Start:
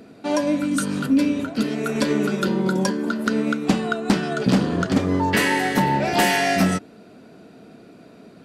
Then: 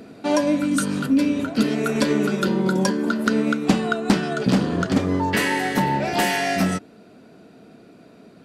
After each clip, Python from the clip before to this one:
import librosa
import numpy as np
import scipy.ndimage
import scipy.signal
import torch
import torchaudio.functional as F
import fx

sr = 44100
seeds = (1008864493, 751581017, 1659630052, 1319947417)

y = fx.rider(x, sr, range_db=10, speed_s=0.5)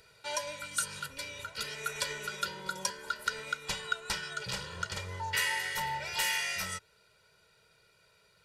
y = fx.tone_stack(x, sr, knobs='10-0-10')
y = y + 0.94 * np.pad(y, (int(2.1 * sr / 1000.0), 0))[:len(y)]
y = y * librosa.db_to_amplitude(-6.0)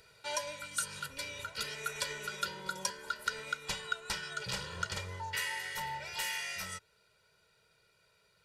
y = fx.rider(x, sr, range_db=3, speed_s=0.5)
y = y * librosa.db_to_amplitude(-3.0)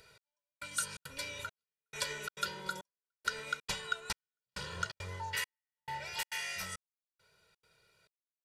y = fx.step_gate(x, sr, bpm=171, pattern='xx.....xxxx.xxx', floor_db=-60.0, edge_ms=4.5)